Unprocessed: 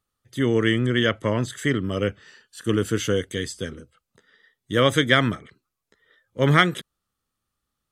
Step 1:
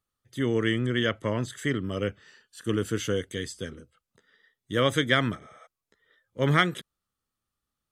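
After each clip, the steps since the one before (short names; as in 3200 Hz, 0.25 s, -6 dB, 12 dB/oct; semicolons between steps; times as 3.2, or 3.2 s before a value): spectral repair 5.44–5.64, 460–10000 Hz before; gain -5 dB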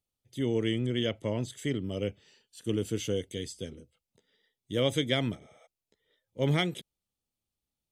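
band shelf 1400 Hz -12.5 dB 1 oct; gain -3 dB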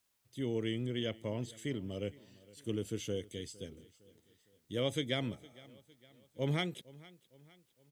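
feedback echo 0.459 s, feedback 47%, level -21.5 dB; requantised 12-bit, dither triangular; gain -6.5 dB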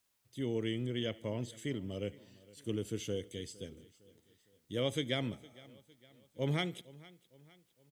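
feedback echo 74 ms, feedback 48%, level -23.5 dB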